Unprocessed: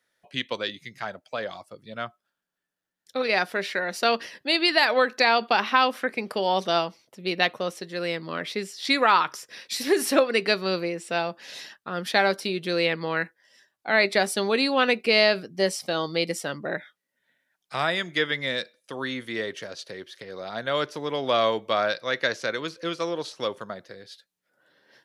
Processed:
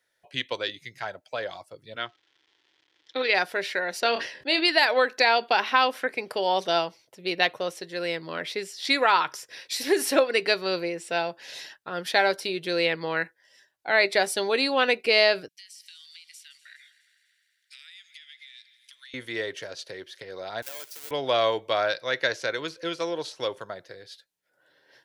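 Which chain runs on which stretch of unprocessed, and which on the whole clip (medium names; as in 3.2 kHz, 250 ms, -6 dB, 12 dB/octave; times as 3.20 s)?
1.95–3.33 s: crackle 490 per s -52 dBFS + cabinet simulation 150–5300 Hz, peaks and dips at 170 Hz -9 dB, 320 Hz +10 dB, 640 Hz -7 dB, 1.9 kHz +5 dB, 3.3 kHz +9 dB
4.00–4.65 s: distance through air 56 m + doubling 25 ms -11 dB + decay stretcher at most 100 dB/s
15.48–19.14 s: inverse Chebyshev high-pass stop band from 880 Hz, stop band 50 dB + compression 20:1, threshold -43 dBFS + multi-head delay 83 ms, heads second and third, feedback 67%, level -17.5 dB
20.62–21.11 s: square wave that keeps the level + de-esser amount 50% + differentiator
whole clip: peaking EQ 210 Hz -11.5 dB 0.53 oct; band-stop 1.2 kHz, Q 8.2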